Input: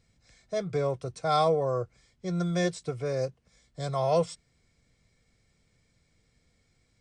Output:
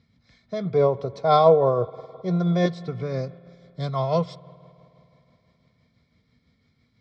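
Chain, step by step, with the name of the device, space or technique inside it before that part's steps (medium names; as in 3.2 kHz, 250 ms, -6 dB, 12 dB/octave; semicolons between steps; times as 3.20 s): 0.65–2.66 s: high-order bell 590 Hz +8.5 dB; combo amplifier with spring reverb and tremolo (spring tank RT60 3 s, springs 52 ms, chirp 60 ms, DRR 19 dB; tremolo 6 Hz, depth 39%; cabinet simulation 86–4200 Hz, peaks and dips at 240 Hz +6 dB, 340 Hz -8 dB, 520 Hz -7 dB, 770 Hz -7 dB, 1.6 kHz -7 dB, 2.7 kHz -10 dB); trim +8 dB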